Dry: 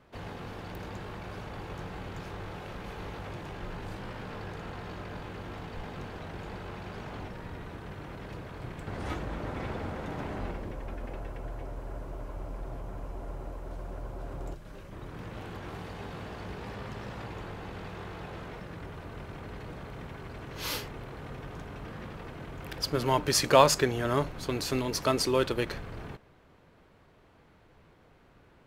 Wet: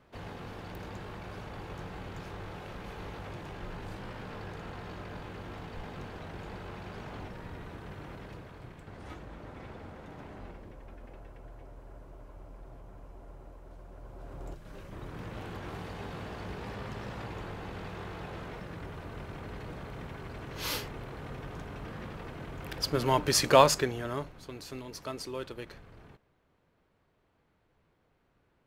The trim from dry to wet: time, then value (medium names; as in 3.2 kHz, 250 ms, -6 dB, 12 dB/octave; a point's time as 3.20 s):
8.11 s -2 dB
8.95 s -10 dB
13.90 s -10 dB
14.80 s 0 dB
23.59 s 0 dB
24.48 s -12 dB